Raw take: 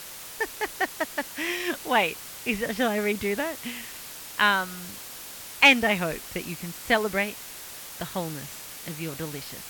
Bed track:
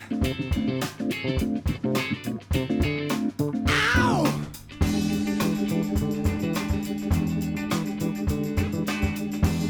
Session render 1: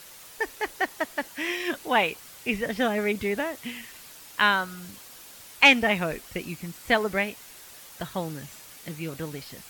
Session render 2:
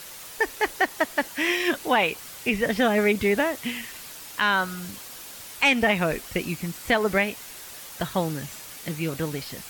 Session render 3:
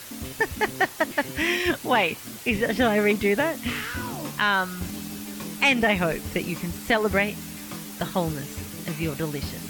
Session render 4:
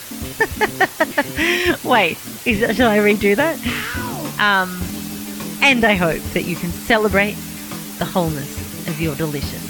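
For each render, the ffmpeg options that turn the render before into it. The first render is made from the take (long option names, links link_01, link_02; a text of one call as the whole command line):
ffmpeg -i in.wav -af "afftdn=noise_reduction=7:noise_floor=-41" out.wav
ffmpeg -i in.wav -af "acontrast=43,alimiter=limit=-11dB:level=0:latency=1:release=159" out.wav
ffmpeg -i in.wav -i bed.wav -filter_complex "[1:a]volume=-11.5dB[link_01];[0:a][link_01]amix=inputs=2:normalize=0" out.wav
ffmpeg -i in.wav -af "volume=7dB" out.wav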